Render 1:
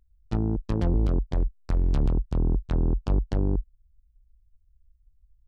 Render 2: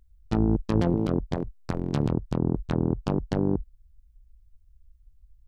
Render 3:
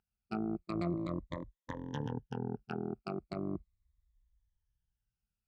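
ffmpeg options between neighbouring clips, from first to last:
-af "afftfilt=real='re*lt(hypot(re,im),0.501)':imag='im*lt(hypot(re,im),0.501)':win_size=1024:overlap=0.75,volume=5dB"
-af "afftfilt=real='re*pow(10,20/40*sin(2*PI*(1.1*log(max(b,1)*sr/1024/100)/log(2)-(-0.38)*(pts-256)/sr)))':imag='im*pow(10,20/40*sin(2*PI*(1.1*log(max(b,1)*sr/1024/100)/log(2)-(-0.38)*(pts-256)/sr)))':win_size=1024:overlap=0.75,bandpass=f=880:t=q:w=0.92:csg=0,equalizer=f=660:t=o:w=2.7:g=-13"

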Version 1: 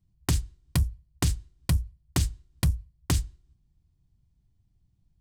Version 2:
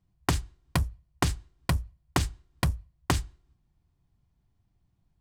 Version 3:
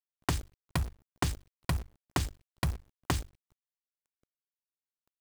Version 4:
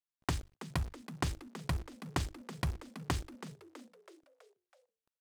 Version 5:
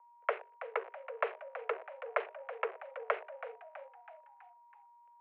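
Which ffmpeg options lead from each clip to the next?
-af "equalizer=f=960:w=0.34:g=13,volume=-4.5dB"
-af "acrusher=bits=7:dc=4:mix=0:aa=0.000001,volume=-4.5dB"
-filter_complex "[0:a]highshelf=f=12k:g=-10.5,asplit=2[a][b];[b]asplit=5[c][d][e][f][g];[c]adelay=326,afreqshift=89,volume=-13dB[h];[d]adelay=652,afreqshift=178,volume=-18.5dB[i];[e]adelay=978,afreqshift=267,volume=-24dB[j];[f]adelay=1304,afreqshift=356,volume=-29.5dB[k];[g]adelay=1630,afreqshift=445,volume=-35.1dB[l];[h][i][j][k][l]amix=inputs=5:normalize=0[m];[a][m]amix=inputs=2:normalize=0,volume=-3.5dB"
-af "aeval=exprs='val(0)+0.000794*sin(2*PI*650*n/s)':c=same,acrusher=samples=6:mix=1:aa=0.000001,highpass=f=160:t=q:w=0.5412,highpass=f=160:t=q:w=1.307,lowpass=f=2.2k:t=q:w=0.5176,lowpass=f=2.2k:t=q:w=0.7071,lowpass=f=2.2k:t=q:w=1.932,afreqshift=300,volume=3.5dB"

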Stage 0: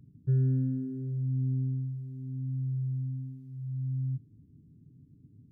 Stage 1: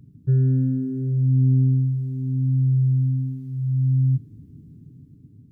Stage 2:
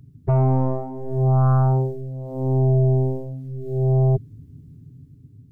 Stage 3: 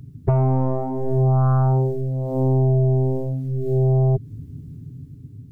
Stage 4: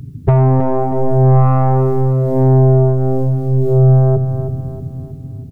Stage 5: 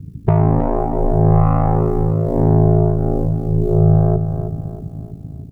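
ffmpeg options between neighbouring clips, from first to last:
-af "dynaudnorm=f=430:g=5:m=6dB,volume=7dB"
-af "aeval=exprs='0.282*(cos(1*acos(clip(val(0)/0.282,-1,1)))-cos(1*PI/2))+0.0224*(cos(6*acos(clip(val(0)/0.282,-1,1)))-cos(6*PI/2))+0.1*(cos(7*acos(clip(val(0)/0.282,-1,1)))-cos(7*PI/2))':c=same,equalizer=f=200:t=o:w=0.33:g=-12,equalizer=f=315:t=o:w=0.33:g=-7,equalizer=f=500:t=o:w=0.33:g=-5"
-af "acompressor=threshold=-23dB:ratio=4,volume=7dB"
-af "aeval=exprs='0.398*(cos(1*acos(clip(val(0)/0.398,-1,1)))-cos(1*PI/2))+0.0282*(cos(5*acos(clip(val(0)/0.398,-1,1)))-cos(5*PI/2))':c=same,aecho=1:1:318|636|954|1272|1590:0.355|0.16|0.0718|0.0323|0.0145,volume=6.5dB"
-af "aeval=exprs='val(0)*sin(2*PI*27*n/s)':c=same"

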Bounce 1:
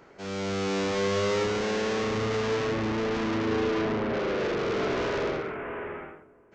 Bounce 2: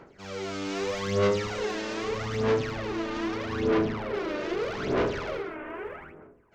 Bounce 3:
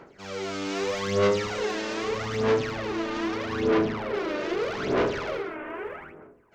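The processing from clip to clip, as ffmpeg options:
-af "aphaser=in_gain=1:out_gain=1:delay=3.3:decay=0.67:speed=0.8:type=sinusoidal,volume=-5dB"
-af "lowshelf=f=130:g=-6.5,volume=2.5dB"

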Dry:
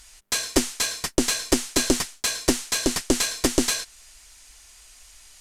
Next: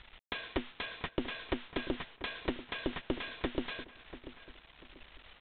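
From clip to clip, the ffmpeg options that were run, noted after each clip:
-filter_complex "[0:a]acompressor=threshold=-31dB:ratio=5,aresample=8000,aeval=exprs='val(0)*gte(abs(val(0)),0.00251)':c=same,aresample=44100,asplit=2[a][b];[b]adelay=689,lowpass=f=1.9k:p=1,volume=-13.5dB,asplit=2[c][d];[d]adelay=689,lowpass=f=1.9k:p=1,volume=0.34,asplit=2[e][f];[f]adelay=689,lowpass=f=1.9k:p=1,volume=0.34[g];[a][c][e][g]amix=inputs=4:normalize=0"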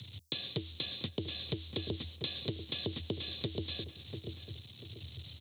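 -af "firequalizer=gain_entry='entry(140,0);entry(700,-18);entry(1500,-22);entry(3100,-3);entry(5000,13)':delay=0.05:min_phase=1,acompressor=threshold=-42dB:ratio=5,afreqshift=77,volume=9dB"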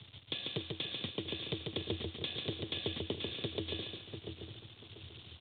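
-af "lowshelf=f=280:g=-5.5,aresample=8000,aeval=exprs='sgn(val(0))*max(abs(val(0))-0.00119,0)':c=same,aresample=44100,aecho=1:1:142|284|426|568|710:0.668|0.241|0.0866|0.0312|0.0112,volume=1.5dB"

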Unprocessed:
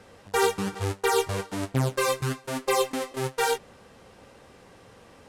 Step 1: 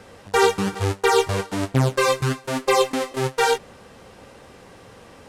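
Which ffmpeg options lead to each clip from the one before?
-filter_complex "[0:a]acrossover=split=7800[a][b];[b]acompressor=threshold=-44dB:ratio=4:attack=1:release=60[c];[a][c]amix=inputs=2:normalize=0,volume=6dB"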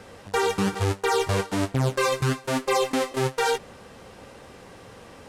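-af "alimiter=limit=-13.5dB:level=0:latency=1:release=17"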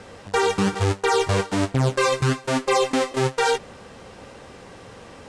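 -af "lowpass=f=9.6k:w=0.5412,lowpass=f=9.6k:w=1.3066,volume=3dB"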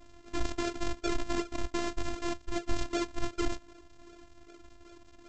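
-af "aresample=16000,acrusher=samples=32:mix=1:aa=0.000001:lfo=1:lforange=32:lforate=2.6,aresample=44100,afftfilt=real='hypot(re,im)*cos(PI*b)':imag='0':win_size=512:overlap=0.75,volume=-5.5dB"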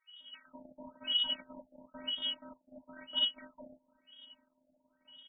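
-filter_complex "[0:a]afftfilt=real='real(if(lt(b,272),68*(eq(floor(b/68),0)*1+eq(floor(b/68),1)*3+eq(floor(b/68),2)*0+eq(floor(b/68),3)*2)+mod(b,68),b),0)':imag='imag(if(lt(b,272),68*(eq(floor(b/68),0)*1+eq(floor(b/68),1)*3+eq(floor(b/68),2)*0+eq(floor(b/68),3)*2)+mod(b,68),b),0)':win_size=2048:overlap=0.75,acrossover=split=1400[a][b];[a]adelay=200[c];[c][b]amix=inputs=2:normalize=0,afftfilt=real='re*lt(b*sr/1024,840*pow(3700/840,0.5+0.5*sin(2*PI*1*pts/sr)))':imag='im*lt(b*sr/1024,840*pow(3700/840,0.5+0.5*sin(2*PI*1*pts/sr)))':win_size=1024:overlap=0.75,volume=-3dB"

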